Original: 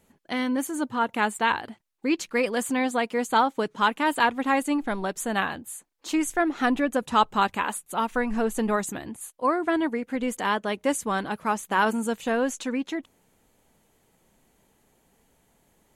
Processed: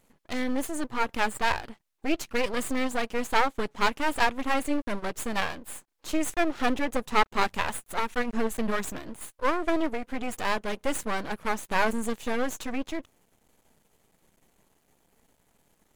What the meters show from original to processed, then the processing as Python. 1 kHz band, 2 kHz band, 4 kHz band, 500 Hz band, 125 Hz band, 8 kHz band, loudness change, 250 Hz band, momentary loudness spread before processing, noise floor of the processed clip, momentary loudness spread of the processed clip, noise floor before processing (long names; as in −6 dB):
−4.0 dB, −2.0 dB, −1.0 dB, −3.0 dB, −2.0 dB, −3.0 dB, −3.0 dB, −4.5 dB, 7 LU, −70 dBFS, 8 LU, −66 dBFS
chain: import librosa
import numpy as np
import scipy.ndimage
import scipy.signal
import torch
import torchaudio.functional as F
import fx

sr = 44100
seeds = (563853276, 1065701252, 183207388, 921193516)

y = np.maximum(x, 0.0)
y = y * 10.0 ** (2.0 / 20.0)